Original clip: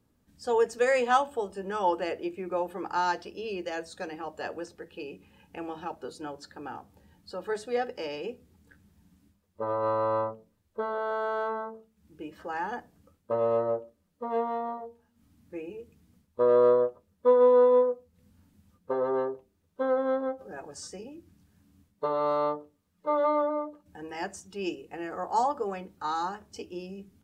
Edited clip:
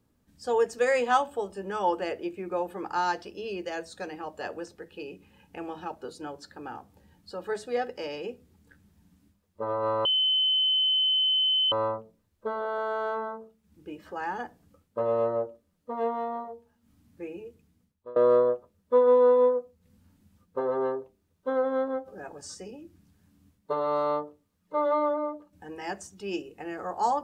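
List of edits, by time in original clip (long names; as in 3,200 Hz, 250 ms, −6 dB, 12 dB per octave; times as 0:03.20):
0:10.05: insert tone 3,050 Hz −21 dBFS 1.67 s
0:15.70–0:16.49: fade out, to −23.5 dB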